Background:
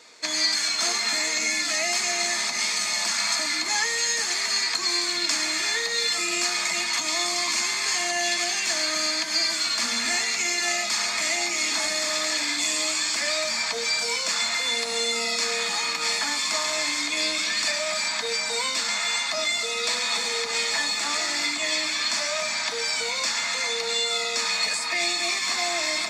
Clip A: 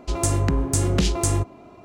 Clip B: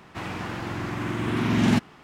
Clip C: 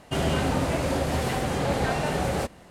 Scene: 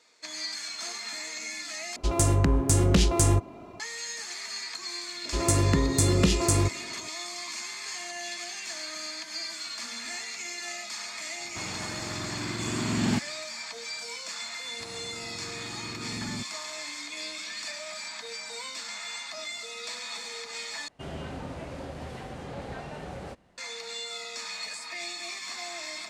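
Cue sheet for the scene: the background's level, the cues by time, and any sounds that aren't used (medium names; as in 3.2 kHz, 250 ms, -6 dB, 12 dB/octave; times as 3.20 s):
background -12 dB
1.96 s: replace with A -1.5 dB + gain riding within 4 dB 2 s
5.25 s: add A + comb of notches 770 Hz
11.40 s: add B -6 dB
14.64 s: add B -14 dB + slew-rate limiter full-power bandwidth 25 Hz
20.88 s: replace with C -13 dB + distance through air 51 m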